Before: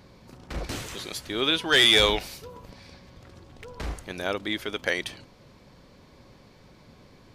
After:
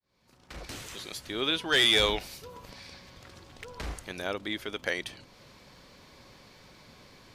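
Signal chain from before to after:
fade in at the beginning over 1.35 s
one half of a high-frequency compander encoder only
level −4.5 dB

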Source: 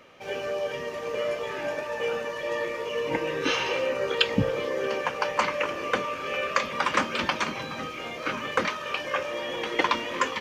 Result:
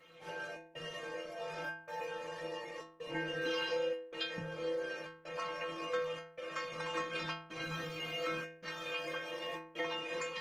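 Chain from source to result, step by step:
dynamic equaliser 560 Hz, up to +5 dB, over −41 dBFS, Q 3
downward compressor 8 to 1, threshold −29 dBFS, peak gain reduction 13.5 dB
gate pattern "xxx.xxxxx.xx" 80 BPM −60 dB
stiff-string resonator 160 Hz, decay 0.73 s, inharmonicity 0.008
level +11.5 dB
Opus 20 kbit/s 48,000 Hz

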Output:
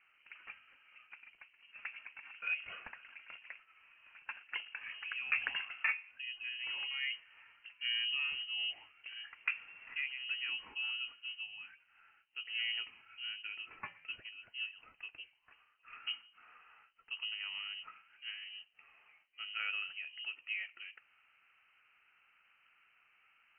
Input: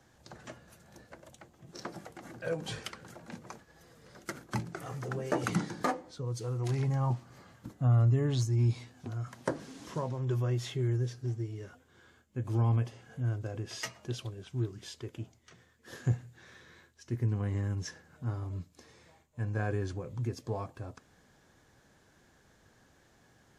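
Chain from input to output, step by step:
three-way crossover with the lows and the highs turned down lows −13 dB, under 300 Hz, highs −21 dB, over 2,100 Hz
voice inversion scrambler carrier 3,000 Hz
level −1.5 dB

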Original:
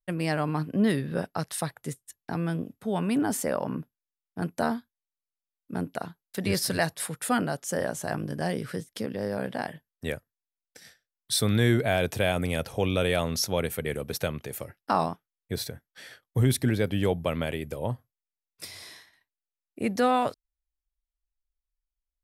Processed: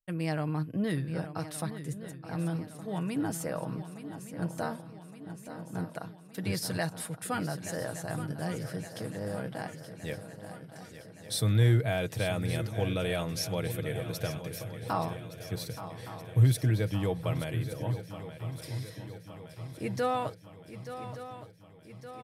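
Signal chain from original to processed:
parametric band 110 Hz +11.5 dB 0.52 octaves
comb filter 6.3 ms, depth 44%
on a send: feedback echo with a long and a short gap by turns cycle 1,167 ms, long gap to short 3 to 1, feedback 59%, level −12 dB
on the sum: level −7.5 dB

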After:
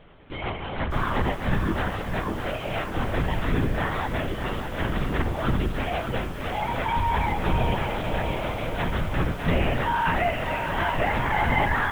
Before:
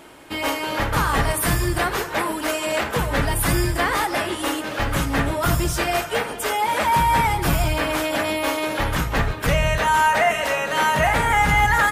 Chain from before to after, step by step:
low-shelf EQ 400 Hz +6 dB
linear-prediction vocoder at 8 kHz whisper
feedback echo at a low word length 603 ms, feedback 55%, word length 6 bits, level −7 dB
level −8 dB

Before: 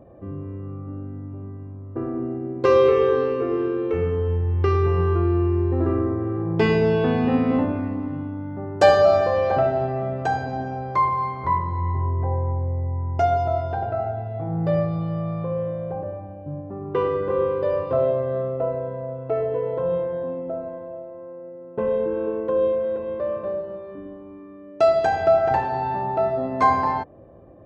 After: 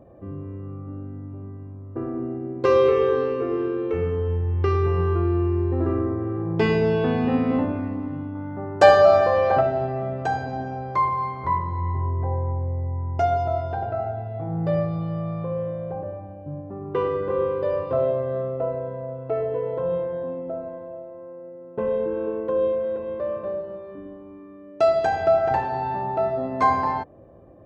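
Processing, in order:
0:08.35–0:09.61: parametric band 1,200 Hz +5 dB 2.3 octaves
level −1.5 dB

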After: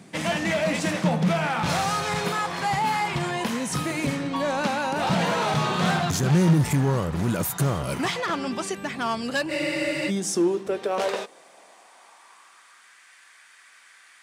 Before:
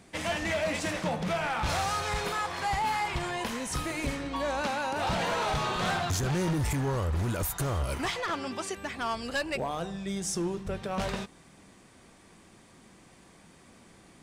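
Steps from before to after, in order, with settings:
high-pass filter sweep 160 Hz → 1,600 Hz, 0:09.55–0:12.99
frozen spectrum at 0:09.51, 0.58 s
level +4.5 dB

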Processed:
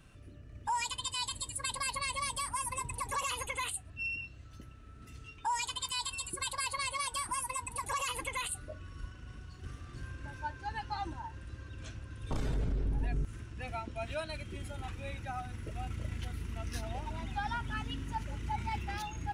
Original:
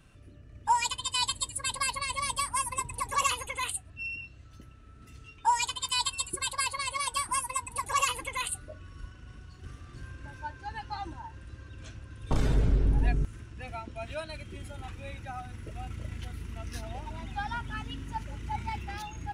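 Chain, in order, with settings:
brickwall limiter −26 dBFS, peak gain reduction 11.5 dB

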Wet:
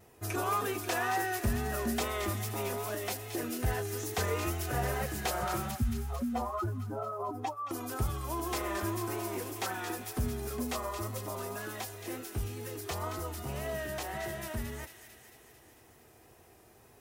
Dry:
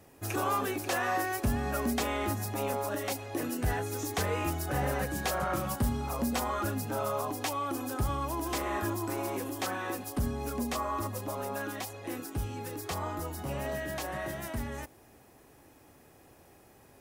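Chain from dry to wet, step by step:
0:05.71–0:07.71: expanding power law on the bin magnitudes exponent 2.2
parametric band 170 Hz −9 dB 0.26 octaves
notch comb filter 280 Hz
tape wow and flutter 51 cents
on a send: delay with a high-pass on its return 223 ms, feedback 67%, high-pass 2,200 Hz, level −7 dB

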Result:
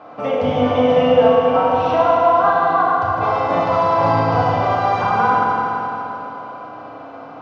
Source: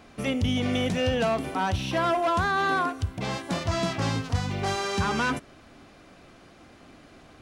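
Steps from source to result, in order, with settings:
high-pass filter 110 Hz 24 dB per octave
flat-topped bell 820 Hz +14 dB
downward compressor, threshold −19 dBFS, peak gain reduction 10.5 dB
high-frequency loss of the air 230 metres
feedback delay network reverb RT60 3.7 s, high-frequency decay 0.85×, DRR −7.5 dB

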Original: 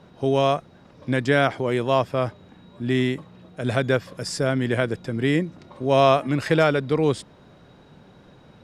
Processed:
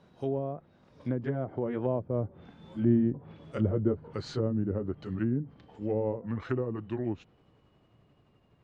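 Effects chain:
pitch glide at a constant tempo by −5 semitones starting unshifted
source passing by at 0:03.22, 6 m/s, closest 6.4 metres
treble cut that deepens with the level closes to 450 Hz, closed at −24.5 dBFS

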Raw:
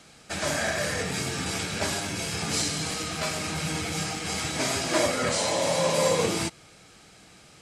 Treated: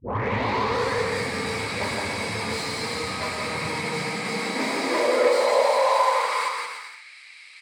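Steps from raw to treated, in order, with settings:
turntable start at the beginning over 0.99 s
EQ curve with evenly spaced ripples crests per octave 0.94, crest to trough 10 dB
mid-hump overdrive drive 21 dB, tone 1,300 Hz, clips at −9 dBFS
high-pass filter sweep 77 Hz → 2,400 Hz, 0:03.24–0:07.11
bouncing-ball delay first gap 170 ms, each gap 0.75×, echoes 5
level −6 dB

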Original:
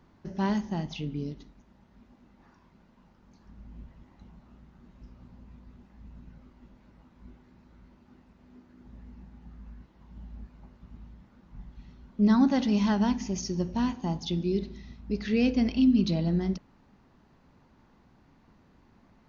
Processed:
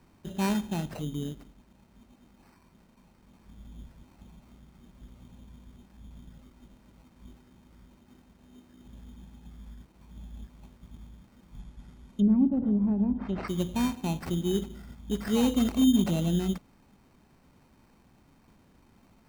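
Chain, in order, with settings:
decimation without filtering 13×
0:11.59–0:13.48: treble cut that deepens with the level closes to 370 Hz, closed at −21 dBFS

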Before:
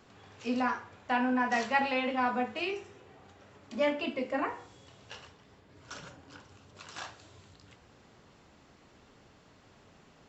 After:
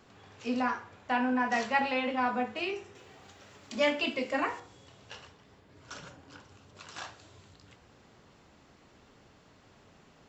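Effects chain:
0:02.95–0:04.60: high-shelf EQ 2,300 Hz +11 dB

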